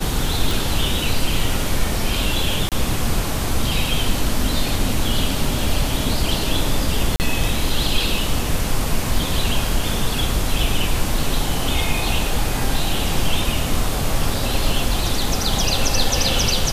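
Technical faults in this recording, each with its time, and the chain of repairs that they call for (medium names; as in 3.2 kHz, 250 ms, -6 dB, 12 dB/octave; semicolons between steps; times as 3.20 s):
0.51 s: pop
2.69–2.72 s: dropout 27 ms
7.16–7.20 s: dropout 39 ms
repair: de-click; interpolate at 2.69 s, 27 ms; interpolate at 7.16 s, 39 ms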